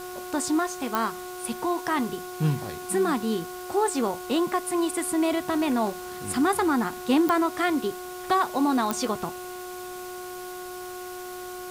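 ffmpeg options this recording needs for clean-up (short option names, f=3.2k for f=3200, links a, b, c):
-af "adeclick=t=4,bandreject=f=363.3:t=h:w=4,bandreject=f=726.6:t=h:w=4,bandreject=f=1.0899k:t=h:w=4,bandreject=f=1.4532k:t=h:w=4,afwtdn=0.0063"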